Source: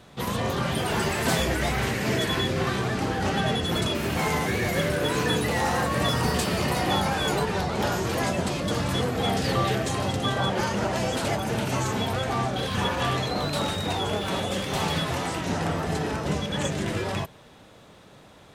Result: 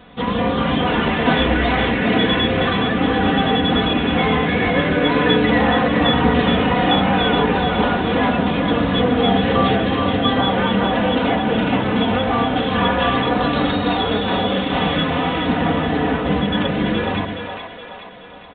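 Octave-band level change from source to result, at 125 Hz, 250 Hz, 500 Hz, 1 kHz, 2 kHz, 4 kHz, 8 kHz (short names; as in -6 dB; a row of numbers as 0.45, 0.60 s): +4.5 dB, +11.5 dB, +8.5 dB, +8.5 dB, +8.5 dB, +7.5 dB, under -40 dB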